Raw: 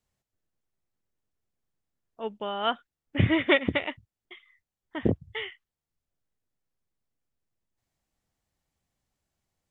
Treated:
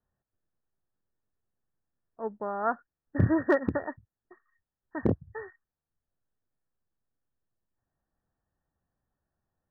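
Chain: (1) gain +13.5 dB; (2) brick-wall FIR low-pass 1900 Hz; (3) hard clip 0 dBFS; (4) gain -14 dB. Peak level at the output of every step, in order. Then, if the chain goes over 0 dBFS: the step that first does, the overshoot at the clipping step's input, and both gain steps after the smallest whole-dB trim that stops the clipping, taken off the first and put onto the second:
+6.0, +4.0, 0.0, -14.0 dBFS; step 1, 4.0 dB; step 1 +9.5 dB, step 4 -10 dB

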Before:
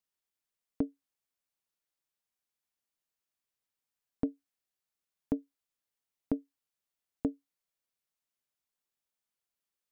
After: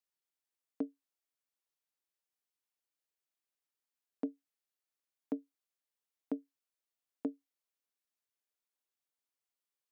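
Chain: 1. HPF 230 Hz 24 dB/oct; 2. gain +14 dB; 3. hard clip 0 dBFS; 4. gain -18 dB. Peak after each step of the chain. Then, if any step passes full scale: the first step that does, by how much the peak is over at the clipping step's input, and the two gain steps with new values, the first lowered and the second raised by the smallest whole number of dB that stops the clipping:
-19.0, -5.0, -5.0, -23.0 dBFS; no overload

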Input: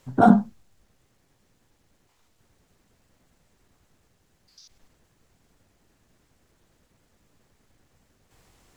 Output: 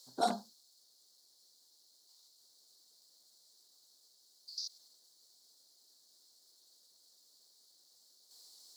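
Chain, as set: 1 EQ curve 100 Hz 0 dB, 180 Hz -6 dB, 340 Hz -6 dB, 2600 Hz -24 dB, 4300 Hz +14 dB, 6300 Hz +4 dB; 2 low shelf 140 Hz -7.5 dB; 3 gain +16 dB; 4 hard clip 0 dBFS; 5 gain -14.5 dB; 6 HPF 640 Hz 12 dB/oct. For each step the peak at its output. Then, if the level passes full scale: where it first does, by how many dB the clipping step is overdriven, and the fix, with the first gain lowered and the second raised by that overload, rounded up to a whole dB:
-9.0, -11.0, +5.0, 0.0, -14.5, -17.5 dBFS; step 3, 5.0 dB; step 3 +11 dB, step 5 -9.5 dB

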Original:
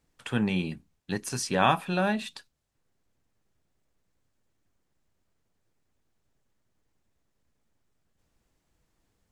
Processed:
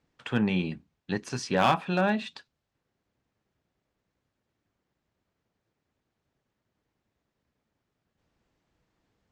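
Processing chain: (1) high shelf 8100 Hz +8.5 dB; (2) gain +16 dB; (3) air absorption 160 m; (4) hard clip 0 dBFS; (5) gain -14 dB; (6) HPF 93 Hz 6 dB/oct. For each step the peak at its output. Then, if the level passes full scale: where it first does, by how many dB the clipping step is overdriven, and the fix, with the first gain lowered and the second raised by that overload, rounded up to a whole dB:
-6.0, +10.0, +9.0, 0.0, -14.0, -12.5 dBFS; step 2, 9.0 dB; step 2 +7 dB, step 5 -5 dB

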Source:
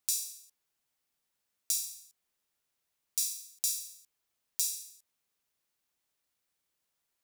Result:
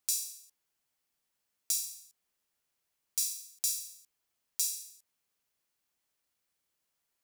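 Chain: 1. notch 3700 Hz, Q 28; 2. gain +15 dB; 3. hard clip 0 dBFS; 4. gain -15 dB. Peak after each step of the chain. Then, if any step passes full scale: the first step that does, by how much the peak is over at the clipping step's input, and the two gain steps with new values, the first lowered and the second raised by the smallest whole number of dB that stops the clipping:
-9.0, +6.0, 0.0, -15.0 dBFS; step 2, 6.0 dB; step 2 +9 dB, step 4 -9 dB

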